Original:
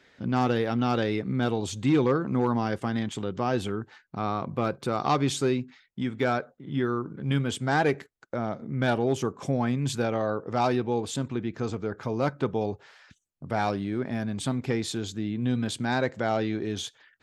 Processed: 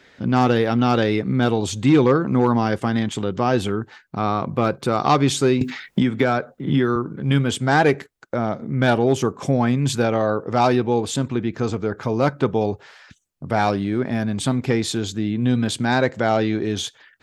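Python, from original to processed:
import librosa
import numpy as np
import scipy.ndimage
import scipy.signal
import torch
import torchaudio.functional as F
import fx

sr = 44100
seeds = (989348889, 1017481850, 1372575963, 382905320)

y = fx.band_squash(x, sr, depth_pct=100, at=(5.61, 6.96))
y = y * librosa.db_to_amplitude(7.5)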